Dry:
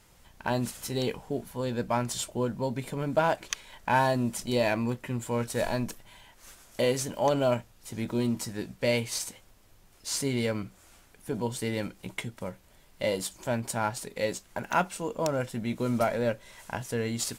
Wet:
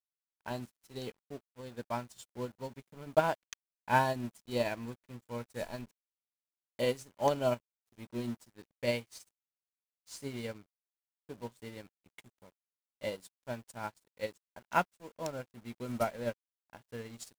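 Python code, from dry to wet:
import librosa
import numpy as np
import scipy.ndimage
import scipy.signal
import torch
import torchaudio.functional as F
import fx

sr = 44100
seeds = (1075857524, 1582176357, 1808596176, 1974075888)

y = np.where(np.abs(x) >= 10.0 ** (-35.5 / 20.0), x, 0.0)
y = fx.upward_expand(y, sr, threshold_db=-43.0, expansion=2.5)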